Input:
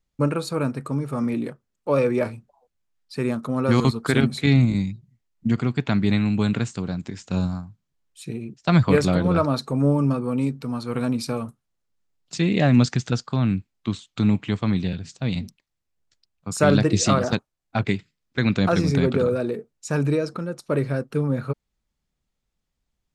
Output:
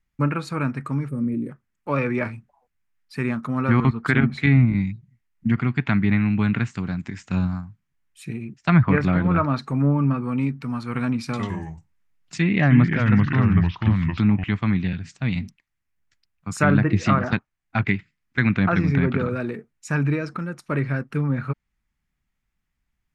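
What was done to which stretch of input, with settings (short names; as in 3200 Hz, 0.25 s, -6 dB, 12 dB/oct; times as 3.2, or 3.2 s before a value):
1.08–1.5 spectral gain 590–8200 Hz -19 dB
11.24–14.44 echoes that change speed 94 ms, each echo -3 st, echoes 2
whole clip: graphic EQ 500/2000/4000/8000 Hz -10/+7/-7/-5 dB; treble ducked by the level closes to 1900 Hz, closed at -15.5 dBFS; gain +2 dB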